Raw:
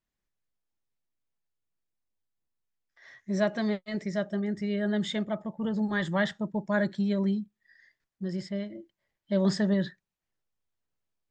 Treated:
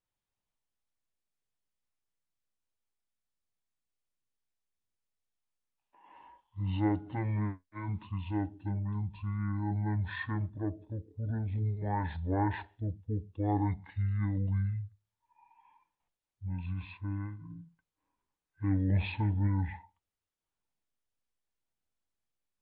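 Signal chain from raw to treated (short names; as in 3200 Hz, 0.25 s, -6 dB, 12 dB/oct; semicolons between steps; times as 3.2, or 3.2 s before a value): speed mistake 15 ips tape played at 7.5 ips; gain -4 dB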